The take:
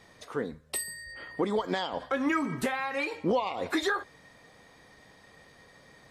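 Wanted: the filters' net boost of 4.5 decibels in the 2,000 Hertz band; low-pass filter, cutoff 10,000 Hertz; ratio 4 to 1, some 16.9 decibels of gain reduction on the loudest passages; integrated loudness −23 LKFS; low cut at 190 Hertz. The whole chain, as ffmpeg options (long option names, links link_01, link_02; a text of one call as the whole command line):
ffmpeg -i in.wav -af "highpass=190,lowpass=10000,equalizer=frequency=2000:width_type=o:gain=5.5,acompressor=threshold=-44dB:ratio=4,volume=22.5dB" out.wav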